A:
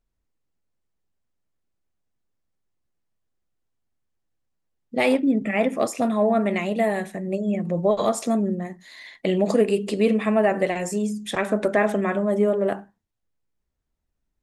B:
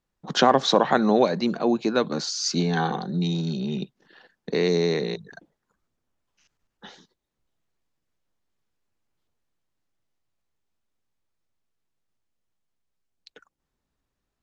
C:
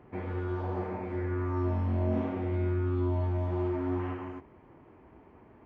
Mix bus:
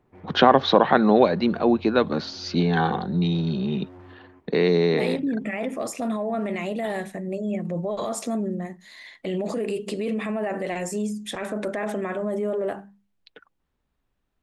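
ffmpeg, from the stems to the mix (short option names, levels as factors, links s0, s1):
-filter_complex "[0:a]bandreject=f=50:t=h:w=6,bandreject=f=100:t=h:w=6,bandreject=f=150:t=h:w=6,bandreject=f=200:t=h:w=6,alimiter=limit=0.126:level=0:latency=1:release=18,volume=0.841[s0];[1:a]lowpass=f=3800:w=0.5412,lowpass=f=3800:w=1.3066,volume=1.33[s1];[2:a]volume=35.5,asoftclip=hard,volume=0.0282,volume=0.282[s2];[s0][s1][s2]amix=inputs=3:normalize=0"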